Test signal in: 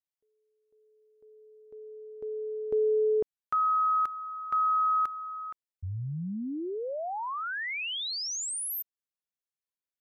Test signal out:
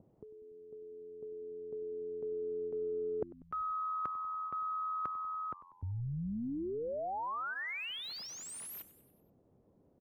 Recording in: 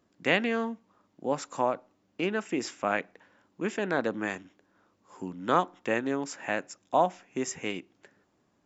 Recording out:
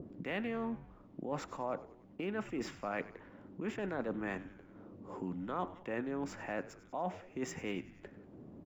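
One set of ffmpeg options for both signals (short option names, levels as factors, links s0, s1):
-filter_complex "[0:a]acrossover=split=570|2500[s0][s1][s2];[s0]acompressor=mode=upward:threshold=0.0158:ratio=2.5:attack=33:release=452:knee=2.83:detection=peak[s3];[s2]acrusher=bits=3:mode=log:mix=0:aa=0.000001[s4];[s3][s1][s4]amix=inputs=3:normalize=0,highpass=78,bass=f=250:g=2,treble=f=4000:g=-13,bandreject=f=1600:w=21,areverse,acompressor=threshold=0.0158:ratio=12:attack=18:release=107:knee=6:detection=peak,areverse,asplit=6[s5][s6][s7][s8][s9][s10];[s6]adelay=96,afreqshift=-88,volume=0.15[s11];[s7]adelay=192,afreqshift=-176,volume=0.0851[s12];[s8]adelay=288,afreqshift=-264,volume=0.0484[s13];[s9]adelay=384,afreqshift=-352,volume=0.0279[s14];[s10]adelay=480,afreqshift=-440,volume=0.0158[s15];[s5][s11][s12][s13][s14][s15]amix=inputs=6:normalize=0,adynamicequalizer=threshold=0.00251:dfrequency=1700:dqfactor=0.7:tfrequency=1700:tqfactor=0.7:attack=5:release=100:ratio=0.375:range=1.5:mode=cutabove:tftype=highshelf"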